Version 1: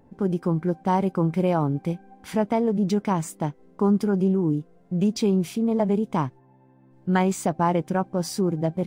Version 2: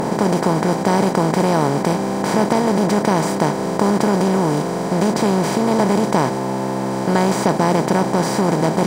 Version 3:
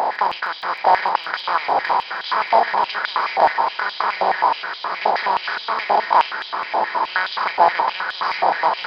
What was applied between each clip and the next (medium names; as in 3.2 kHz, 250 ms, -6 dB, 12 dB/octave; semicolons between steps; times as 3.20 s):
spectral levelling over time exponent 0.2; trim -1 dB
resampled via 11.025 kHz; echo with a slow build-up 155 ms, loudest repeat 5, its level -13 dB; step-sequenced high-pass 9.5 Hz 770–3400 Hz; trim -2 dB